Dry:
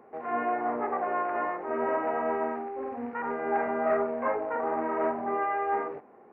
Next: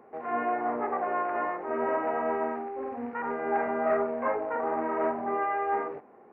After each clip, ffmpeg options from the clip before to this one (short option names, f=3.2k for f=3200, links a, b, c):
-af anull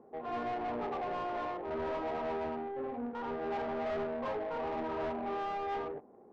-af "asoftclip=type=tanh:threshold=-31dB,adynamicsmooth=sensitivity=2:basefreq=640"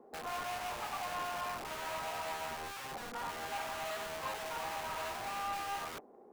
-filter_complex "[0:a]equalizer=f=100:w=0.76:g=-12.5,acrossover=split=670[a][b];[a]aeval=exprs='(mod(133*val(0)+1,2)-1)/133':c=same[c];[c][b]amix=inputs=2:normalize=0,volume=1.5dB"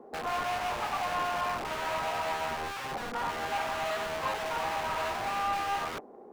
-af "highshelf=f=6.2k:g=-10.5,volume=8dB"